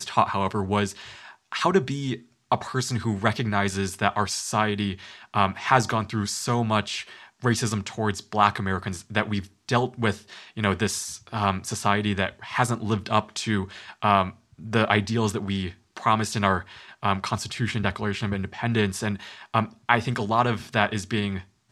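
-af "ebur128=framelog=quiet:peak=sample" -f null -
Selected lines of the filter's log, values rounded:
Integrated loudness:
  I:         -25.5 LUFS
  Threshold: -35.8 LUFS
Loudness range:
  LRA:         1.9 LU
  Threshold: -45.8 LUFS
  LRA low:   -26.6 LUFS
  LRA high:  -24.8 LUFS
Sample peak:
  Peak:       -3.3 dBFS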